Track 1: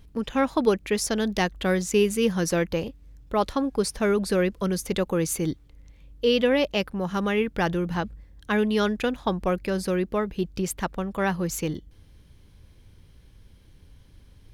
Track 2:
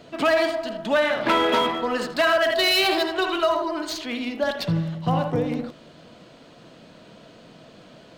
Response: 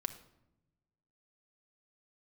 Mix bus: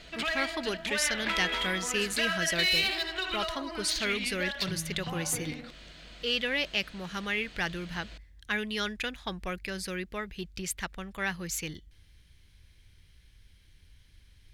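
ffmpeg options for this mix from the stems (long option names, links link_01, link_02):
-filter_complex "[0:a]acontrast=74,volume=-11.5dB[link_01];[1:a]acompressor=threshold=-31dB:ratio=2.5,volume=-1.5dB[link_02];[link_01][link_02]amix=inputs=2:normalize=0,equalizer=frequency=125:width_type=o:width=1:gain=-4,equalizer=frequency=250:width_type=o:width=1:gain=-7,equalizer=frequency=500:width_type=o:width=1:gain=-7,equalizer=frequency=1000:width_type=o:width=1:gain=-6,equalizer=frequency=2000:width_type=o:width=1:gain=7,equalizer=frequency=4000:width_type=o:width=1:gain=4,equalizer=frequency=8000:width_type=o:width=1:gain=3"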